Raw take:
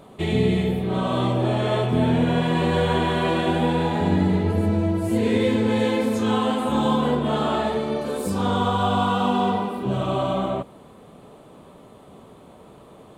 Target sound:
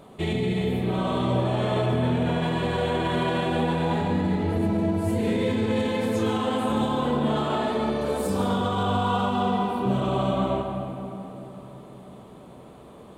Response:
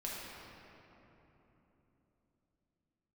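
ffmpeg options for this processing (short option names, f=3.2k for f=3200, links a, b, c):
-filter_complex "[0:a]alimiter=limit=-16dB:level=0:latency=1:release=38,asplit=2[a][b];[1:a]atrim=start_sample=2205,adelay=138[c];[b][c]afir=irnorm=-1:irlink=0,volume=-6.5dB[d];[a][d]amix=inputs=2:normalize=0,volume=-1.5dB"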